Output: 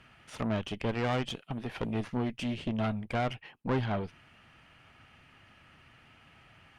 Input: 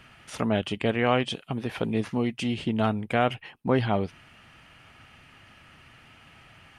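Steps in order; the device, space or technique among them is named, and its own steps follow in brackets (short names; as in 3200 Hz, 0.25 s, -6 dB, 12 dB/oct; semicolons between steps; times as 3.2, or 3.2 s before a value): tube preamp driven hard (tube stage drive 23 dB, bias 0.8; high shelf 5200 Hz -6 dB)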